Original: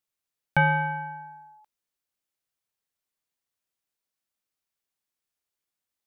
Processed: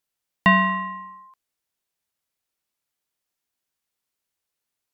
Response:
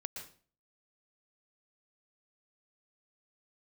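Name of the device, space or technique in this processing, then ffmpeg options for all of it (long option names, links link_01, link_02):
nightcore: -af "asetrate=54243,aresample=44100,volume=5dB"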